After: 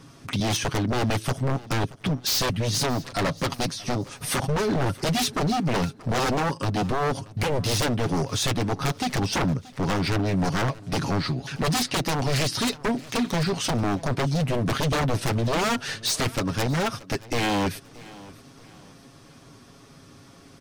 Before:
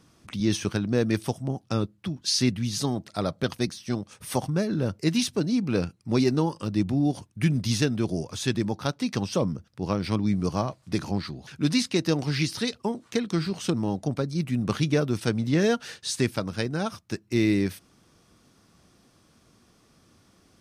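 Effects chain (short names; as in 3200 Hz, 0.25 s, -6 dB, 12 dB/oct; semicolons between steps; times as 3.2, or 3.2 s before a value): high shelf 6200 Hz -4.5 dB; comb 7.3 ms, depth 58%; in parallel at 0 dB: compressor, threshold -32 dBFS, peak gain reduction 16.5 dB; on the sum: wavefolder -22 dBFS; feedback echo 0.629 s, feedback 36%, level -20.5 dB; gain +3.5 dB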